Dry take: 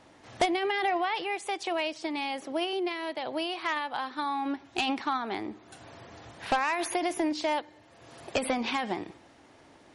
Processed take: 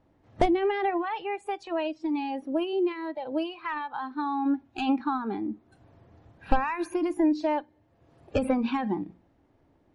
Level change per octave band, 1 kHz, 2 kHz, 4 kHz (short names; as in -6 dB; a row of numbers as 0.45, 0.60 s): 0.0, -4.5, -8.5 dB